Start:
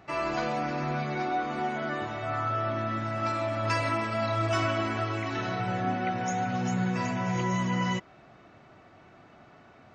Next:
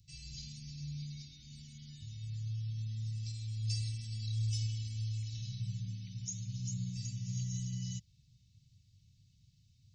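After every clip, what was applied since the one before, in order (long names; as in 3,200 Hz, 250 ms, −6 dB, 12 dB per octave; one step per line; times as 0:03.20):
inverse Chebyshev band-stop filter 470–1,200 Hz, stop band 80 dB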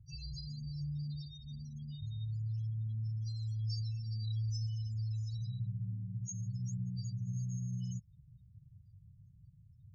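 downward compressor 2.5 to 1, threshold −45 dBFS, peak gain reduction 9.5 dB
spectral peaks only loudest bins 8
level +7 dB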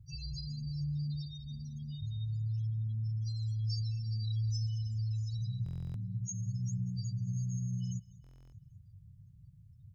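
repeating echo 197 ms, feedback 55%, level −21.5 dB
buffer that repeats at 0:05.64/0:08.22, samples 1,024, times 12
level +3 dB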